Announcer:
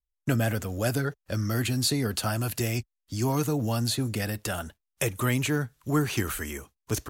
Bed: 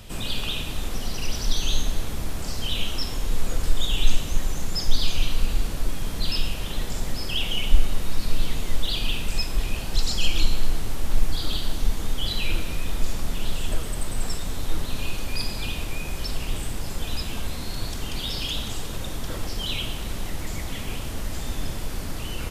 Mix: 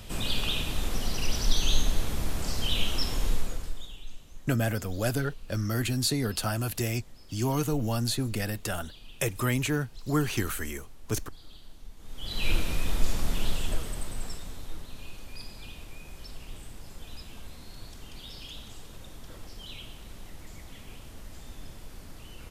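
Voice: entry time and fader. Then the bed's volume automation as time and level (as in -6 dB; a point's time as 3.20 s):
4.20 s, -1.5 dB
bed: 3.28 s -1 dB
4.04 s -23.5 dB
11.95 s -23.5 dB
12.48 s -1 dB
13.42 s -1 dB
14.88 s -14.5 dB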